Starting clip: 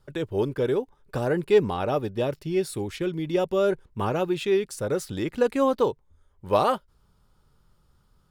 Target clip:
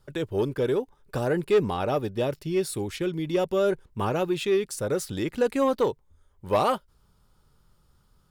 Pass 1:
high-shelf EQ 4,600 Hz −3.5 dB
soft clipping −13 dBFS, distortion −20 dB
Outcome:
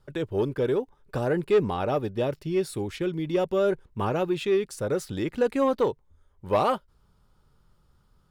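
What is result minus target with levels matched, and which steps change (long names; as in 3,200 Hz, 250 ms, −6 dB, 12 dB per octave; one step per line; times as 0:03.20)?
8,000 Hz band −5.5 dB
change: high-shelf EQ 4,600 Hz +4 dB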